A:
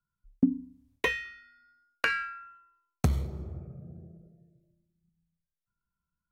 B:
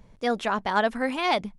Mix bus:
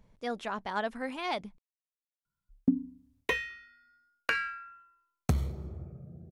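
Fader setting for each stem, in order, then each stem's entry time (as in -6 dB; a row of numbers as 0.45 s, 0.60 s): -2.0 dB, -9.5 dB; 2.25 s, 0.00 s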